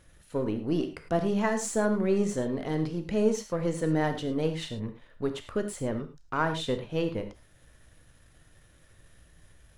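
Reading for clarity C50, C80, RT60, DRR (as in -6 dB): 9.5 dB, 13.0 dB, not exponential, 7.0 dB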